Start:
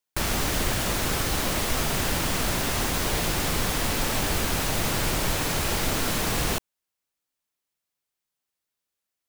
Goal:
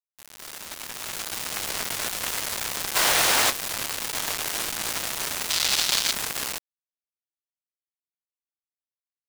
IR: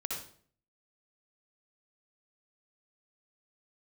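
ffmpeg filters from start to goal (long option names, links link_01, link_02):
-filter_complex "[0:a]highpass=710,asoftclip=type=tanh:threshold=-19dB,asettb=1/sr,asplit=3[link_01][link_02][link_03];[link_01]atrim=end=4.184[link_04];[link_02]atrim=start=4.18:end=4.75,asetpts=PTS-STARTPTS,afade=type=in:duration=0.004:curve=qsin,afade=type=out:start_time=0.566:duration=0.004:curve=qsin,aecho=1:1:7.1:0.31,atrim=end_sample=25137[link_05];[link_03]atrim=start=4.746[link_06];[link_04][link_05]acrossfade=duration=0.004:curve1=hsin:curve2=qsin[link_07];[link_07][link_06]acrossfade=duration=0.004:curve1=qsin:curve2=hsin,afwtdn=0.0126,aecho=1:1:234:0.631,asplit=3[link_08][link_09][link_10];[link_08]afade=type=out:start_time=2.95:duration=0.02[link_11];[link_09]acontrast=27,afade=type=in:start_time=2.95:duration=0.02,afade=type=out:start_time=3.49:duration=0.02[link_12];[link_10]afade=type=in:start_time=3.49:duration=0.02[link_13];[link_11][link_12][link_13]amix=inputs=3:normalize=0,acrusher=bits=3:mix=0:aa=0.000001,dynaudnorm=framelen=450:gausssize=5:maxgain=11dB,asettb=1/sr,asplit=3[link_14][link_15][link_16];[link_14]atrim=end=5.504[link_17];[link_15]atrim=start=5.5:end=6.12,asetpts=PTS-STARTPTS,afade=type=in:duration=0.004:curve=qsin,afade=type=out:start_time=0.616:duration=0.004:curve=qsin,equalizer=frequency=4100:width_type=o:width=1.7:gain=11[link_18];[link_16]atrim=start=6.116[link_19];[link_17][link_18]acrossfade=duration=0.004:curve1=hsin:curve2=qsin[link_20];[link_20][link_19]acrossfade=duration=0.004:curve1=qsin:curve2=hsin,volume=-8dB"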